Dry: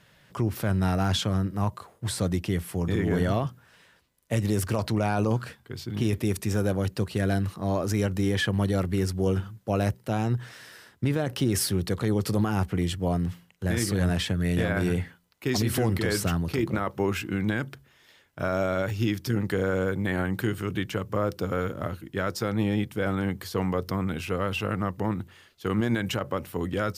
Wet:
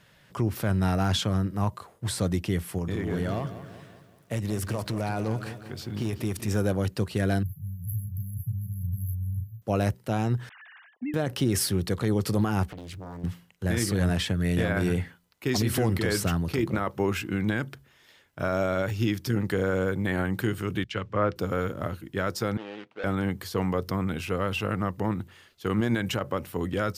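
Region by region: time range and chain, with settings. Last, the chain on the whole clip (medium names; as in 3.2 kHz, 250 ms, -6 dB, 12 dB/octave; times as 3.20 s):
2.78–6.48 s: hard clipper -18 dBFS + compression 1.5:1, threshold -32 dBFS + bit-crushed delay 190 ms, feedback 55%, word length 10-bit, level -12 dB
7.43–9.62 s: brick-wall FIR band-stop 170–11000 Hz + peaking EQ 13 kHz +7 dB 1.4 oct + doubling 35 ms -5 dB
10.49–11.14 s: formants replaced by sine waves + compression 3:1, threshold -31 dBFS
12.69–13.24 s: compression 12:1, threshold -35 dBFS + loudspeaker Doppler distortion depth 0.98 ms
20.84–21.36 s: low-pass 4.4 kHz + dynamic bell 2.1 kHz, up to +7 dB, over -45 dBFS, Q 0.71 + three bands expanded up and down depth 100%
22.57–23.04 s: median filter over 25 samples + band-pass 660–3500 Hz
whole clip: none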